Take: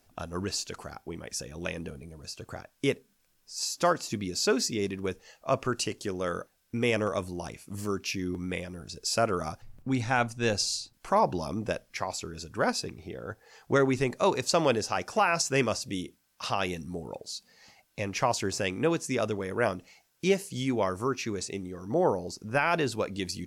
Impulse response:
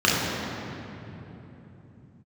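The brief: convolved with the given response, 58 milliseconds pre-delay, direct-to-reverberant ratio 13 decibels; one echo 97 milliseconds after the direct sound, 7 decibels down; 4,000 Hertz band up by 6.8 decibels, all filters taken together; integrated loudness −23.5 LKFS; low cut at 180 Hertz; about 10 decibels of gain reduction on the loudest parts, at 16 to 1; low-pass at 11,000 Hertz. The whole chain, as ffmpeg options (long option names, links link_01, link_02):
-filter_complex "[0:a]highpass=180,lowpass=11000,equalizer=frequency=4000:width_type=o:gain=9,acompressor=threshold=-27dB:ratio=16,aecho=1:1:97:0.447,asplit=2[link_01][link_02];[1:a]atrim=start_sample=2205,adelay=58[link_03];[link_02][link_03]afir=irnorm=-1:irlink=0,volume=-33.5dB[link_04];[link_01][link_04]amix=inputs=2:normalize=0,volume=9dB"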